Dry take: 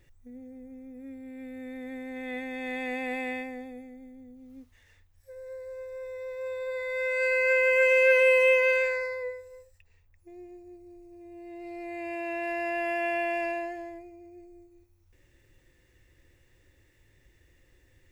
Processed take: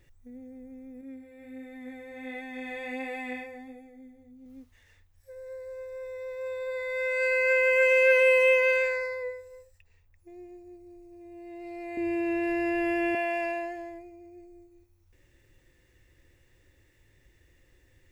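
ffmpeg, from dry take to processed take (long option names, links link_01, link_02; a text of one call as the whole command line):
ffmpeg -i in.wav -filter_complex "[0:a]asettb=1/sr,asplit=3[link_01][link_02][link_03];[link_01]atrim=end=1.014[link_04];[link_02]atrim=start=1.01:end=4.46,asetpts=PTS-STARTPTS,afade=type=in:duration=0.004:curve=qsin,afade=type=out:start_time=3.446:duration=0.004:curve=qsin,flanger=delay=18:depth=3.5:speed=1.4[link_05];[link_03]atrim=start=4.456[link_06];[link_04][link_05]acrossfade=duration=0.004:curve1=hsin:curve2=qsin[link_07];[link_07][link_06]acrossfade=duration=0.004:curve1=qsin:curve2=hsin,asettb=1/sr,asplit=3[link_08][link_09][link_10];[link_08]atrim=end=11.974[link_11];[link_09]atrim=start=11.97:end=13.15,asetpts=PTS-STARTPTS,afade=type=in:duration=0.004:curve=qsin,afade=type=out:start_time=1.176:duration=0.004:curve=qsin,lowshelf=frequency=400:width_type=q:width=1.5:gain=11.5[link_12];[link_10]atrim=start=13.146[link_13];[link_11][link_12]acrossfade=duration=0.004:curve1=hsin:curve2=qsin[link_14];[link_14][link_13]acrossfade=duration=0.004:curve1=qsin:curve2=hsin" out.wav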